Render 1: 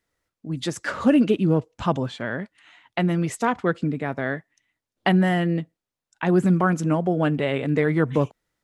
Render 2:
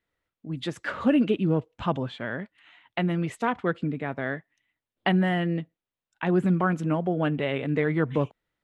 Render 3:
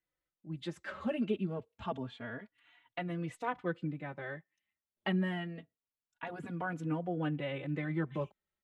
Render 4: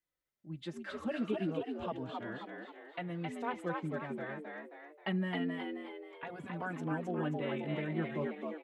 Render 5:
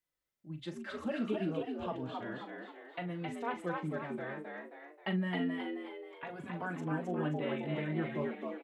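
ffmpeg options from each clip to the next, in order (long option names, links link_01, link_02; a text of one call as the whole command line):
ffmpeg -i in.wav -af "highshelf=frequency=4300:width_type=q:width=1.5:gain=-7.5,volume=-4dB" out.wav
ffmpeg -i in.wav -filter_complex "[0:a]asplit=2[link_01][link_02];[link_02]adelay=3.5,afreqshift=0.27[link_03];[link_01][link_03]amix=inputs=2:normalize=1,volume=-7.5dB" out.wav
ffmpeg -i in.wav -filter_complex "[0:a]asplit=7[link_01][link_02][link_03][link_04][link_05][link_06][link_07];[link_02]adelay=266,afreqshift=74,volume=-3dB[link_08];[link_03]adelay=532,afreqshift=148,volume=-9.7dB[link_09];[link_04]adelay=798,afreqshift=222,volume=-16.5dB[link_10];[link_05]adelay=1064,afreqshift=296,volume=-23.2dB[link_11];[link_06]adelay=1330,afreqshift=370,volume=-30dB[link_12];[link_07]adelay=1596,afreqshift=444,volume=-36.7dB[link_13];[link_01][link_08][link_09][link_10][link_11][link_12][link_13]amix=inputs=7:normalize=0,volume=-2.5dB" out.wav
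ffmpeg -i in.wav -filter_complex "[0:a]asplit=2[link_01][link_02];[link_02]adelay=39,volume=-9.5dB[link_03];[link_01][link_03]amix=inputs=2:normalize=0" out.wav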